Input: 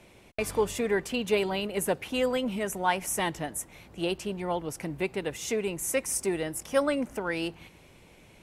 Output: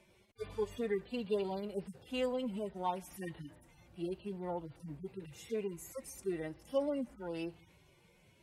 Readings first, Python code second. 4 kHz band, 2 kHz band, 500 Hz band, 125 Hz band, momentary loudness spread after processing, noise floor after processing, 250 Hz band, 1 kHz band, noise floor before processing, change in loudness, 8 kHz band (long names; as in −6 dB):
−14.5 dB, −17.5 dB, −8.5 dB, −8.0 dB, 11 LU, −67 dBFS, −8.0 dB, −10.5 dB, −56 dBFS, −10.0 dB, −20.5 dB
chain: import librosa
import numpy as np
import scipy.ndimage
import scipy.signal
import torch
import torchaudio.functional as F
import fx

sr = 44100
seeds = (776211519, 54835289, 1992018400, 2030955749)

y = fx.hpss_only(x, sr, part='harmonic')
y = y * 10.0 ** (-7.5 / 20.0)